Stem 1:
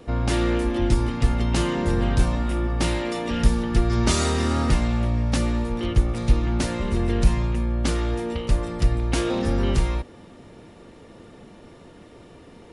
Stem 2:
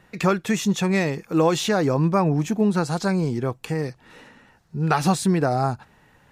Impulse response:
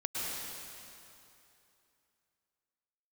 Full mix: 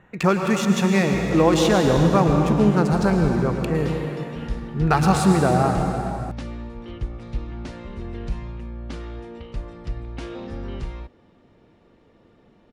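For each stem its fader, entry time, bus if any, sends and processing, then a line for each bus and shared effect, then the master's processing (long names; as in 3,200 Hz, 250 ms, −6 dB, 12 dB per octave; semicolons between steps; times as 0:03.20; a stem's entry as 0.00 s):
−10.0 dB, 1.05 s, no send, Bessel low-pass filter 3,900 Hz, order 2
−2.5 dB, 0.00 s, send −3 dB, adaptive Wiener filter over 9 samples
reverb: on, RT60 2.8 s, pre-delay 98 ms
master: no processing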